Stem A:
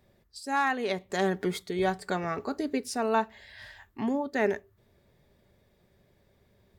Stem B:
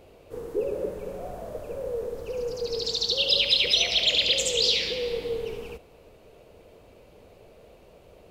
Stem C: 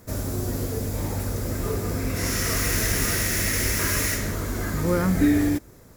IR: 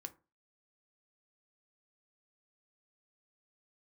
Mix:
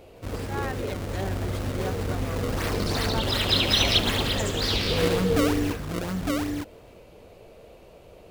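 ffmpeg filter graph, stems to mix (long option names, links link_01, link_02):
-filter_complex "[0:a]volume=-8dB,asplit=2[link_01][link_02];[1:a]volume=1dB,asplit=2[link_03][link_04];[link_04]volume=-5.5dB[link_05];[2:a]acrusher=samples=30:mix=1:aa=0.000001:lfo=1:lforange=48:lforate=2.7,adelay=150,volume=-4.5dB,asplit=2[link_06][link_07];[link_07]volume=-3.5dB[link_08];[link_02]apad=whole_len=366341[link_09];[link_03][link_09]sidechaincompress=threshold=-59dB:ratio=8:attack=16:release=225[link_10];[3:a]atrim=start_sample=2205[link_11];[link_05][link_11]afir=irnorm=-1:irlink=0[link_12];[link_08]aecho=0:1:907:1[link_13];[link_01][link_10][link_06][link_12][link_13]amix=inputs=5:normalize=0"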